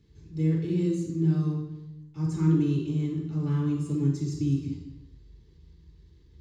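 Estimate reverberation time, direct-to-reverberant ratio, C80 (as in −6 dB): 1.0 s, −5.0 dB, 6.0 dB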